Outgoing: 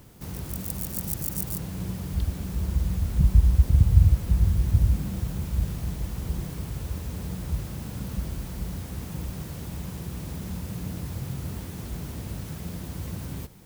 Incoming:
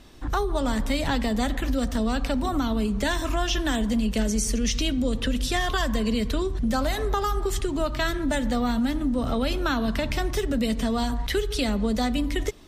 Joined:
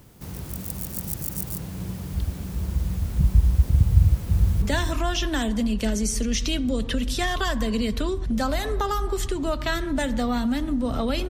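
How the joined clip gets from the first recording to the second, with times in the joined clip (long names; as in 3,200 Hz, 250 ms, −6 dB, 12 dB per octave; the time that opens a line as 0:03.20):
outgoing
0:04.00–0:04.62: delay throw 310 ms, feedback 25%, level −7 dB
0:04.62: continue with incoming from 0:02.95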